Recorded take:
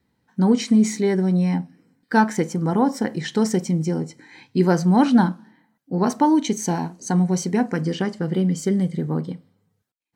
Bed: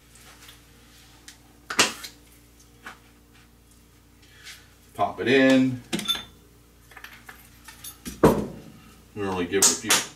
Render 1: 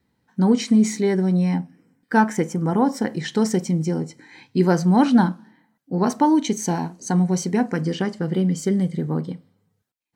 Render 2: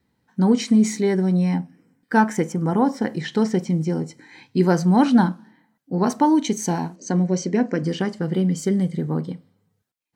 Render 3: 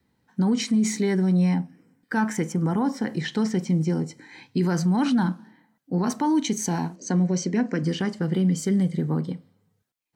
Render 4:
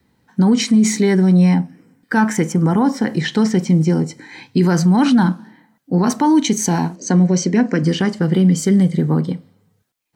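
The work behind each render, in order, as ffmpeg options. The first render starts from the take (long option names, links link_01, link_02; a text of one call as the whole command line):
ffmpeg -i in.wav -filter_complex "[0:a]asettb=1/sr,asplit=3[link_01][link_02][link_03];[link_01]atrim=end=1.604[link_04];[link_02]atrim=start=1.6:end=2.82,asetpts=PTS-STARTPTS,afade=type=in:duration=0.004:curve=qsin,afade=type=out:start_time=1.216:duration=0.004:curve=qsin,equalizer=frequency=4200:width_type=o:width=0.41:gain=-8[link_05];[link_03]atrim=start=2.816[link_06];[link_04][link_05]acrossfade=duration=0.004:curve1=hsin:curve2=qsin[link_07];[link_07][link_06]acrossfade=duration=0.004:curve1=qsin:curve2=hsin" out.wav
ffmpeg -i in.wav -filter_complex "[0:a]asettb=1/sr,asplit=3[link_01][link_02][link_03];[link_01]atrim=end=2.524[link_04];[link_02]atrim=start=2.52:end=4.03,asetpts=PTS-STARTPTS,afade=type=in:duration=0.004:curve=qsin,afade=type=out:start_time=1.506:duration=0.004:curve=qsin,acrossover=split=4800[link_05][link_06];[link_06]acompressor=threshold=-48dB:ratio=4:attack=1:release=60[link_07];[link_05][link_07]amix=inputs=2:normalize=0[link_08];[link_03]atrim=start=4.026[link_09];[link_04][link_08]acrossfade=duration=0.004:curve1=hsin:curve2=qsin[link_10];[link_10][link_09]acrossfade=duration=0.004:curve1=qsin:curve2=hsin,asplit=3[link_11][link_12][link_13];[link_11]afade=type=out:start_time=6.95:duration=0.02[link_14];[link_12]highpass=150,equalizer=frequency=310:width_type=q:width=4:gain=5,equalizer=frequency=580:width_type=q:width=4:gain=8,equalizer=frequency=820:width_type=q:width=4:gain=-10,equalizer=frequency=1300:width_type=q:width=4:gain=-4,equalizer=frequency=3700:width_type=q:width=4:gain=-5,lowpass=frequency=6700:width=0.5412,lowpass=frequency=6700:width=1.3066,afade=type=in:start_time=6.95:duration=0.02,afade=type=out:start_time=7.82:duration=0.02[link_15];[link_13]afade=type=in:start_time=7.82:duration=0.02[link_16];[link_14][link_15][link_16]amix=inputs=3:normalize=0" out.wav
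ffmpeg -i in.wav -filter_complex "[0:a]acrossover=split=360|840|1500[link_01][link_02][link_03][link_04];[link_02]acompressor=threshold=-35dB:ratio=6[link_05];[link_01][link_05][link_03][link_04]amix=inputs=4:normalize=0,alimiter=limit=-15dB:level=0:latency=1:release=31" out.wav
ffmpeg -i in.wav -af "volume=8.5dB" out.wav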